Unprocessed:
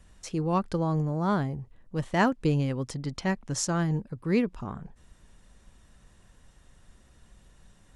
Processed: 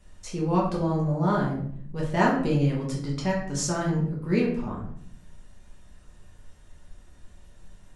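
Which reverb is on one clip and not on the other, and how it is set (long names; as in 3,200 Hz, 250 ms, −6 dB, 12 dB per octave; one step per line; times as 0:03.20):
rectangular room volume 100 cubic metres, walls mixed, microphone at 1.3 metres
level −3.5 dB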